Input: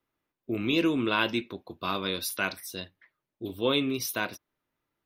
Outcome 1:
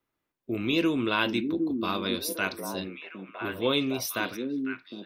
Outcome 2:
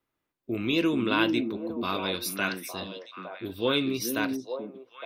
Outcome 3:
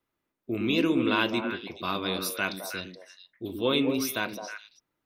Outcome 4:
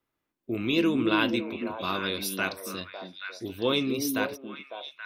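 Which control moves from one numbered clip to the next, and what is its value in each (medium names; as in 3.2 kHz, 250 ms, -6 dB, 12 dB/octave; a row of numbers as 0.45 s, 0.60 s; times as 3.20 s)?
repeats whose band climbs or falls, time: 759 ms, 431 ms, 106 ms, 276 ms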